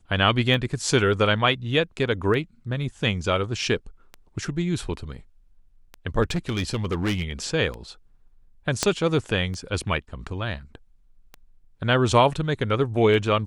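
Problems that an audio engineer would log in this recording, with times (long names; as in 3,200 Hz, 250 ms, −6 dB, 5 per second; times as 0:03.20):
scratch tick 33 1/3 rpm
0:06.22–0:07.31: clipping −20.5 dBFS
0:08.83: click −6 dBFS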